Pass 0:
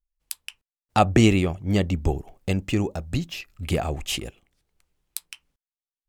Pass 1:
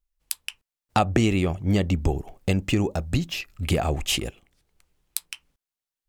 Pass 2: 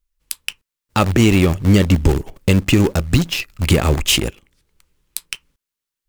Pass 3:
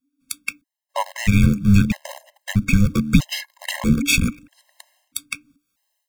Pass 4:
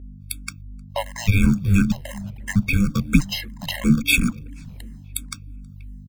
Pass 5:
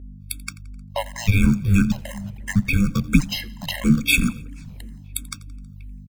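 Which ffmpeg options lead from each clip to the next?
-af "acompressor=threshold=-22dB:ratio=4,volume=4dB"
-filter_complex "[0:a]equalizer=f=720:t=o:w=0.27:g=-13.5,asplit=2[a][b];[b]acrusher=bits=5:dc=4:mix=0:aa=0.000001,volume=-4dB[c];[a][c]amix=inputs=2:normalize=0,alimiter=level_in=7.5dB:limit=-1dB:release=50:level=0:latency=1,volume=-2dB"
-af "afreqshift=-300,dynaudnorm=f=150:g=3:m=16dB,afftfilt=real='re*gt(sin(2*PI*0.78*pts/sr)*(1-2*mod(floor(b*sr/1024/540),2)),0)':imag='im*gt(sin(2*PI*0.78*pts/sr)*(1-2*mod(floor(b*sr/1024/540),2)),0)':win_size=1024:overlap=0.75,volume=-1dB"
-filter_complex "[0:a]aeval=exprs='val(0)+0.0158*(sin(2*PI*50*n/s)+sin(2*PI*2*50*n/s)/2+sin(2*PI*3*50*n/s)/3+sin(2*PI*4*50*n/s)/4+sin(2*PI*5*50*n/s)/5)':c=same,asplit=2[a][b];[b]adelay=481,lowpass=f=1.2k:p=1,volume=-21dB,asplit=2[c][d];[d]adelay=481,lowpass=f=1.2k:p=1,volume=0.45,asplit=2[e][f];[f]adelay=481,lowpass=f=1.2k:p=1,volume=0.45[g];[a][c][e][g]amix=inputs=4:normalize=0,asplit=2[h][i];[i]afreqshift=-2.9[j];[h][j]amix=inputs=2:normalize=1,volume=1.5dB"
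-af "aecho=1:1:86|172|258:0.0841|0.0395|0.0186"

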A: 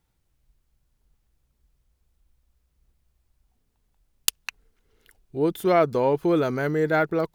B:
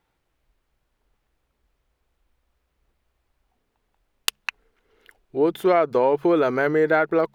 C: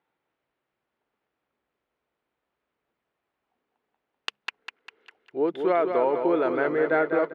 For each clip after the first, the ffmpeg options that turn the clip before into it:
-af "bass=f=250:g=-12,treble=f=4k:g=-12,bandreject=f=68.94:t=h:w=4,bandreject=f=137.88:t=h:w=4,bandreject=f=206.82:t=h:w=4,acompressor=threshold=-22dB:ratio=6,volume=7.5dB"
-filter_complex "[0:a]highpass=210,lowpass=3k,asplit=2[a][b];[b]aecho=0:1:200|400|600|800|1000|1200:0.473|0.227|0.109|0.0523|0.0251|0.0121[c];[a][c]amix=inputs=2:normalize=0,volume=-4.5dB"

